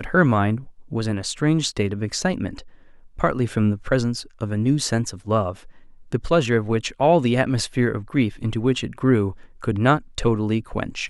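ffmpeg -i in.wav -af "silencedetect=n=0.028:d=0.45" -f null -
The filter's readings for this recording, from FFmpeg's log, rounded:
silence_start: 2.59
silence_end: 3.19 | silence_duration: 0.59
silence_start: 5.53
silence_end: 6.12 | silence_duration: 0.59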